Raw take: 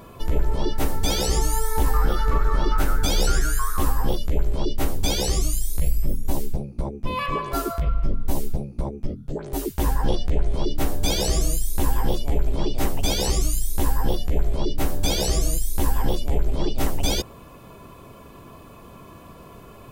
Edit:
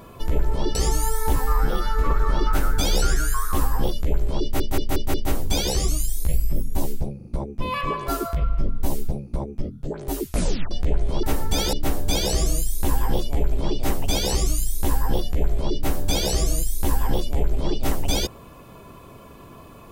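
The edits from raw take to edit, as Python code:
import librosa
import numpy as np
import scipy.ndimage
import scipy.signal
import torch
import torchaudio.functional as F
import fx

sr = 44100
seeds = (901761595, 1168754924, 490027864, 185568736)

y = fx.edit(x, sr, fx.move(start_s=0.75, length_s=0.5, to_s=10.68),
    fx.stretch_span(start_s=1.86, length_s=0.5, factor=1.5),
    fx.stutter(start_s=4.67, slice_s=0.18, count=5),
    fx.stutter(start_s=6.7, slice_s=0.04, count=3),
    fx.tape_stop(start_s=9.7, length_s=0.46), tone=tone)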